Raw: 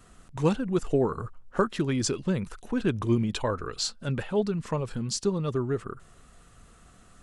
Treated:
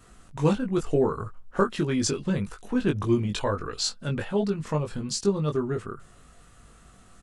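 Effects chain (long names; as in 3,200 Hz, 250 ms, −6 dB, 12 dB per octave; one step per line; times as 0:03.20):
double-tracking delay 20 ms −4 dB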